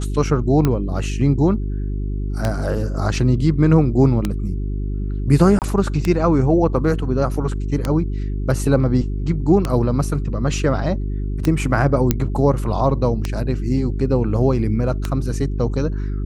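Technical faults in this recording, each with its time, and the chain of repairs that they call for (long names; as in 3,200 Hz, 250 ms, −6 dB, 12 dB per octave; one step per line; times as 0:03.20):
mains hum 50 Hz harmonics 8 −23 dBFS
scratch tick 33 1/3 rpm −6 dBFS
0:05.59–0:05.62: drop-out 28 ms
0:12.11: click −1 dBFS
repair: click removal
hum removal 50 Hz, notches 8
repair the gap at 0:05.59, 28 ms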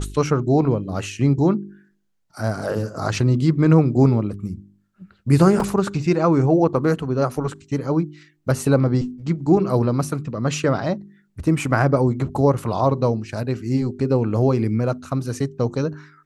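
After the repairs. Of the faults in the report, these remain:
none of them is left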